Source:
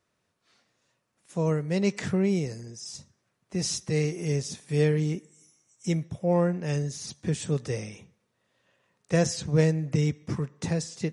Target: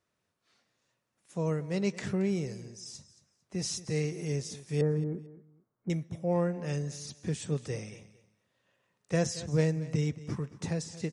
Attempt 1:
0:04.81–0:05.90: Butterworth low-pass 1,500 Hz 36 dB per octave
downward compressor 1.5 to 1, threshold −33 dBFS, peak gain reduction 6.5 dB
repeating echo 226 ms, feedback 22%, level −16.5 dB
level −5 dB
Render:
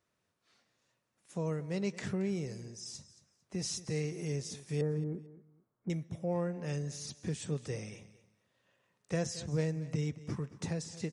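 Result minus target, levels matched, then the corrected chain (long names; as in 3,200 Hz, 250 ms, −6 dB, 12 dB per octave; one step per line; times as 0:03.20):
downward compressor: peak gain reduction +6.5 dB
0:04.81–0:05.90: Butterworth low-pass 1,500 Hz 36 dB per octave
repeating echo 226 ms, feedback 22%, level −16.5 dB
level −5 dB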